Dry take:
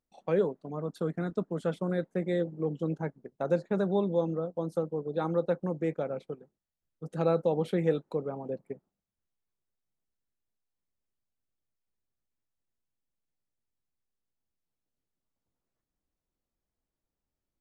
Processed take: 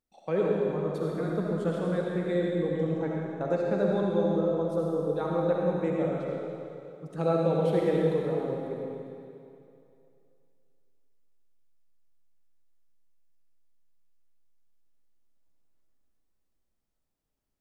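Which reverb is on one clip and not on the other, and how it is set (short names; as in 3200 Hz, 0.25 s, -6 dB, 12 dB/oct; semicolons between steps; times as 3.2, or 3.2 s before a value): digital reverb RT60 2.6 s, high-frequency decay 1×, pre-delay 25 ms, DRR -3 dB; gain -1.5 dB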